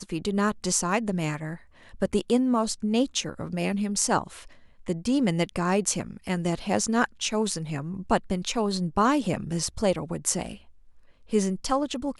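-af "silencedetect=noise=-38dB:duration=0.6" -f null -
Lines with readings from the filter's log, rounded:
silence_start: 10.56
silence_end: 11.31 | silence_duration: 0.75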